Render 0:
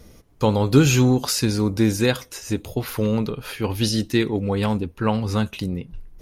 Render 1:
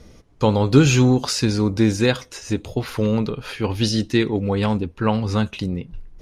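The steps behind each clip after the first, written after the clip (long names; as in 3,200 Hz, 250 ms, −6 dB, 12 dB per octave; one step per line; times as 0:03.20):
low-pass filter 7,100 Hz 12 dB per octave
level +1.5 dB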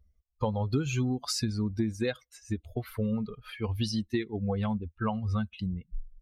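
spectral dynamics exaggerated over time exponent 2
parametric band 6,100 Hz −4 dB 2 octaves
downward compressor 6 to 1, threshold −28 dBFS, peak gain reduction 17.5 dB
level +1.5 dB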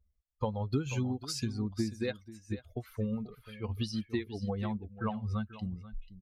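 single-tap delay 488 ms −11.5 dB
expander for the loud parts 1.5 to 1, over −37 dBFS
level −2 dB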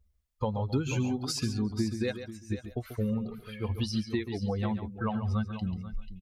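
in parallel at +1 dB: brickwall limiter −29.5 dBFS, peak gain reduction 9.5 dB
on the sum: single-tap delay 139 ms −10.5 dB
level −1.5 dB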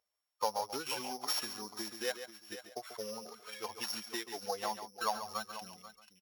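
samples sorted by size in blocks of 8 samples
high-pass with resonance 750 Hz, resonance Q 1.5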